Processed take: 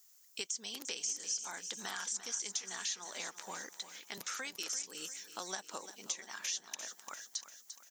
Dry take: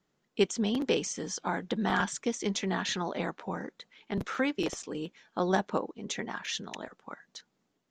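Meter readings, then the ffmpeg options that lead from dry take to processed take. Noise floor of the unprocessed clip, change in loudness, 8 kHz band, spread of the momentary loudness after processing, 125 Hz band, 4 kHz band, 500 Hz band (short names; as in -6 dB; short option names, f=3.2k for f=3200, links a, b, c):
-78 dBFS, -7.5 dB, +3.5 dB, 8 LU, -26.5 dB, -3.0 dB, -19.5 dB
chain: -filter_complex "[0:a]aderivative,acompressor=threshold=-53dB:ratio=4,asplit=2[a][b];[b]aecho=0:1:346|692|1038|1384|1730:0.224|0.114|0.0582|0.0297|0.0151[c];[a][c]amix=inputs=2:normalize=0,aexciter=amount=4:drive=4.8:freq=5k,acrossover=split=5300[d][e];[e]acompressor=threshold=-55dB:ratio=4:attack=1:release=60[f];[d][f]amix=inputs=2:normalize=0,volume=12dB"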